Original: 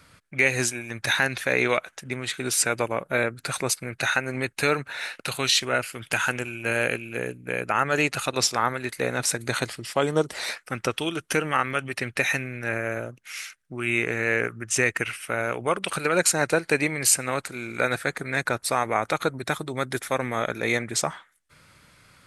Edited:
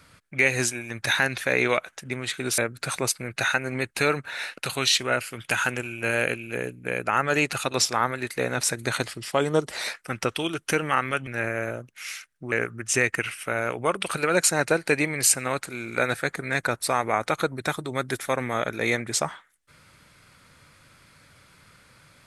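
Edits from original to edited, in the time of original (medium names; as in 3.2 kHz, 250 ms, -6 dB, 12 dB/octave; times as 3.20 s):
2.58–3.20 s: delete
11.89–12.56 s: delete
13.81–14.34 s: delete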